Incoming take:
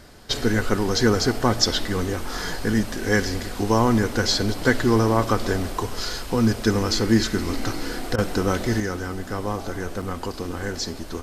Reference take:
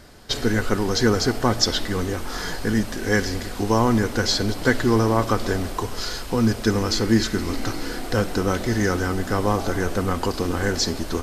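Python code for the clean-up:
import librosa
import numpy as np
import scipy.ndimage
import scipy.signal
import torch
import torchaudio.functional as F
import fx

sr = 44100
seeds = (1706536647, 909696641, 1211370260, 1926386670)

y = fx.fix_interpolate(x, sr, at_s=(10.02,), length_ms=5.4)
y = fx.fix_interpolate(y, sr, at_s=(8.16,), length_ms=21.0)
y = fx.gain(y, sr, db=fx.steps((0.0, 0.0), (8.8, 6.0)))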